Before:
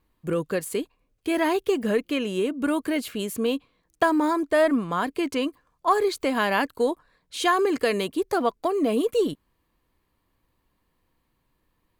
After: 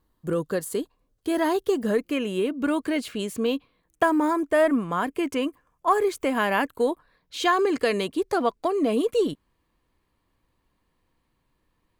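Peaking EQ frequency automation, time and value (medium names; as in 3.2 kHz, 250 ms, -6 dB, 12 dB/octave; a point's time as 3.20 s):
peaking EQ -10.5 dB 0.44 oct
1.89 s 2.4 kHz
2.79 s 13 kHz
3.30 s 13 kHz
4.03 s 4.2 kHz
6.62 s 4.2 kHz
7.80 s 15 kHz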